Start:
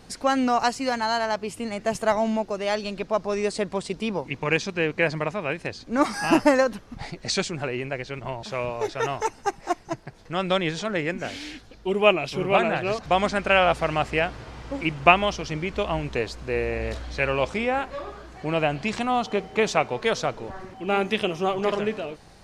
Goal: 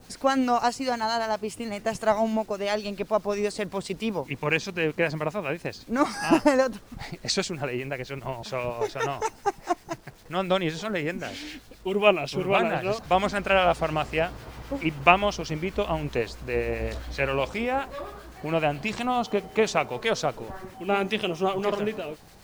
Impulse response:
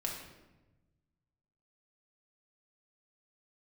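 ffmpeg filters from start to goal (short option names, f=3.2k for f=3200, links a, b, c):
-filter_complex "[0:a]adynamicequalizer=threshold=0.0158:dfrequency=2000:dqfactor=1.3:tfrequency=2000:tqfactor=1.3:attack=5:release=100:ratio=0.375:range=2:mode=cutabove:tftype=bell,acrusher=bits=8:mix=0:aa=0.000001,acrossover=split=1200[a][b];[a]aeval=exprs='val(0)*(1-0.5/2+0.5/2*cos(2*PI*7.6*n/s))':c=same[c];[b]aeval=exprs='val(0)*(1-0.5/2-0.5/2*cos(2*PI*7.6*n/s))':c=same[d];[c][d]amix=inputs=2:normalize=0,volume=1dB"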